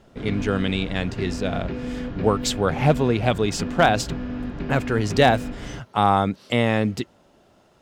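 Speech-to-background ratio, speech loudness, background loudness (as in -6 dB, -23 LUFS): 9.0 dB, -22.5 LUFS, -31.5 LUFS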